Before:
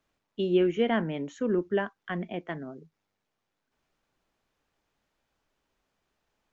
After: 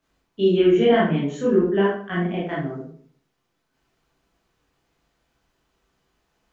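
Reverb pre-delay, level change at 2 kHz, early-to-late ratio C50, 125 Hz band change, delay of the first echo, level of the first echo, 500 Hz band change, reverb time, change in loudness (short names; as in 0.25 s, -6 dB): 18 ms, +7.0 dB, 3.0 dB, +10.0 dB, none, none, +9.0 dB, 0.50 s, +9.0 dB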